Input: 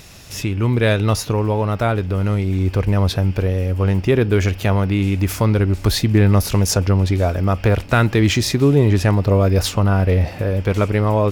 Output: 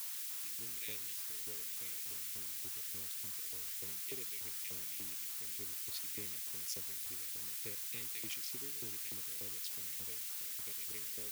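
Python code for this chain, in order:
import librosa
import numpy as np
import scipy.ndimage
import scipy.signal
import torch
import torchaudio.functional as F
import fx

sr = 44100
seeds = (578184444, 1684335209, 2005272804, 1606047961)

y = fx.wiener(x, sr, points=41)
y = scipy.signal.sosfilt(scipy.signal.ellip(3, 1.0, 40, [460.0, 2000.0], 'bandstop', fs=sr, output='sos'), y)
y = fx.tone_stack(y, sr, knobs='10-0-1')
y = fx.dmg_noise_colour(y, sr, seeds[0], colour='blue', level_db=-45.0)
y = fx.filter_lfo_highpass(y, sr, shape='saw_up', hz=3.4, low_hz=630.0, high_hz=2200.0, q=0.94)
y = F.gain(torch.from_numpy(y), 2.0).numpy()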